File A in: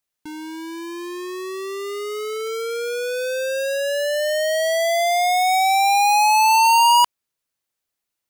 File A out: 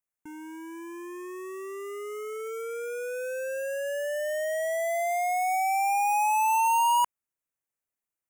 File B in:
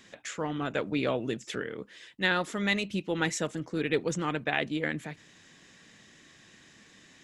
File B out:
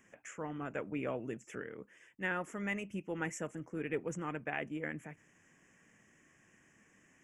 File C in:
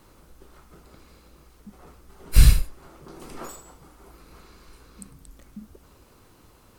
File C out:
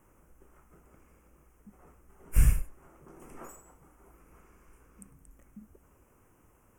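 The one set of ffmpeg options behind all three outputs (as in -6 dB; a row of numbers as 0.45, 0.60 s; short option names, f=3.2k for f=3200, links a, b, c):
-af "asuperstop=centerf=4100:order=4:qfactor=1.1,volume=-8.5dB"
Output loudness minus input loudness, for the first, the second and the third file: -9.5, -9.0, -9.0 LU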